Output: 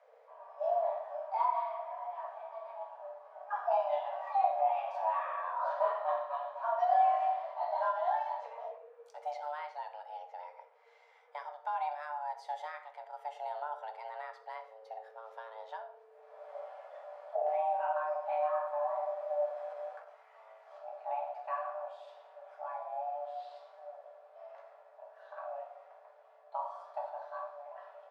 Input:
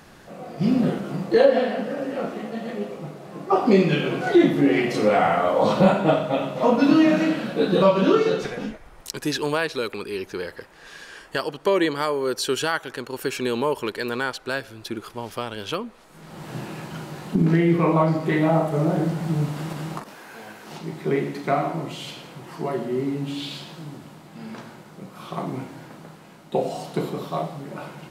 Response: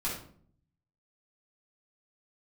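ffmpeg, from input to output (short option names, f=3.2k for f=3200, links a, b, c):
-filter_complex "[0:a]afreqshift=440,bandpass=f=330:t=q:w=3.7:csg=0,asplit=2[a][b];[1:a]atrim=start_sample=2205[c];[b][c]afir=irnorm=-1:irlink=0,volume=-7dB[d];[a][d]amix=inputs=2:normalize=0"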